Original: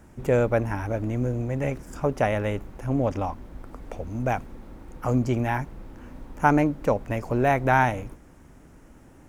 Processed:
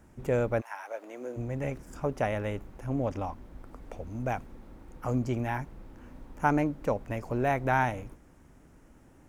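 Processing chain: 0.60–1.36 s: high-pass 880 Hz -> 270 Hz 24 dB/octave; trim -6 dB

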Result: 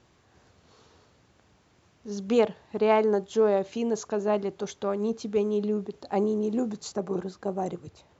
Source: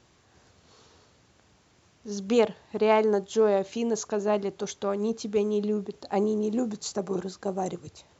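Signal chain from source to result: treble shelf 3.9 kHz -6.5 dB, from 6.92 s -11.5 dB

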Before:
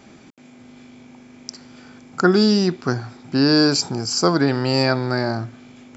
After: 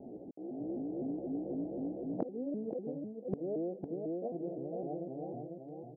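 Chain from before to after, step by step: sawtooth pitch modulation +6.5 st, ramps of 254 ms; gate -33 dBFS, range -7 dB; level rider gain up to 7 dB; steep low-pass 730 Hz 72 dB/octave; feedback delay 498 ms, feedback 36%, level -5 dB; inverted gate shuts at -19 dBFS, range -29 dB; bass shelf 150 Hz -11.5 dB; delay 504 ms -14 dB; compression 6:1, threshold -42 dBFS, peak gain reduction 12 dB; trim +10 dB

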